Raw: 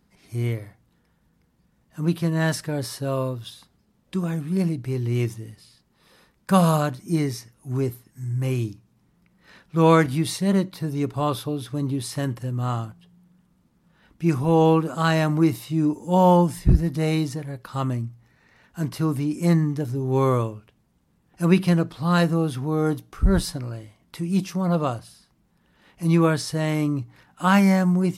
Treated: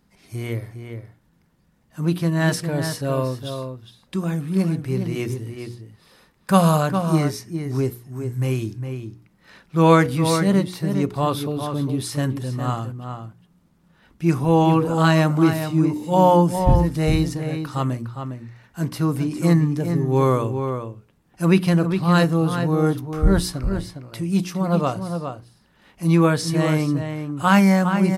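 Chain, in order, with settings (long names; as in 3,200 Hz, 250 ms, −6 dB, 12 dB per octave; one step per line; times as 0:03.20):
mains-hum notches 60/120/180/240/300/360/420/480 Hz
slap from a distant wall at 70 metres, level −7 dB
level +2.5 dB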